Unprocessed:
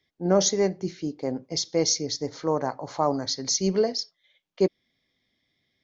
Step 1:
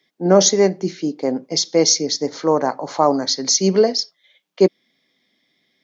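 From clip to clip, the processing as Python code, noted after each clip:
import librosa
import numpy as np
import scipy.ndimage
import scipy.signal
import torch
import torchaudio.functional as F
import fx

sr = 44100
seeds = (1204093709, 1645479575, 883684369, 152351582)

y = scipy.signal.sosfilt(scipy.signal.butter(4, 170.0, 'highpass', fs=sr, output='sos'), x)
y = F.gain(torch.from_numpy(y), 8.5).numpy()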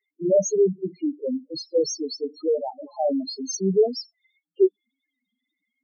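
y = fx.spec_topn(x, sr, count=2)
y = F.gain(torch.from_numpy(y), -2.0).numpy()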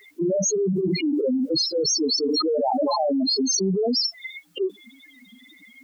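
y = fx.env_flatten(x, sr, amount_pct=100)
y = F.gain(torch.from_numpy(y), -9.0).numpy()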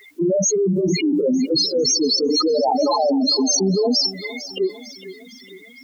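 y = fx.echo_feedback(x, sr, ms=454, feedback_pct=50, wet_db=-16)
y = F.gain(torch.from_numpy(y), 4.0).numpy()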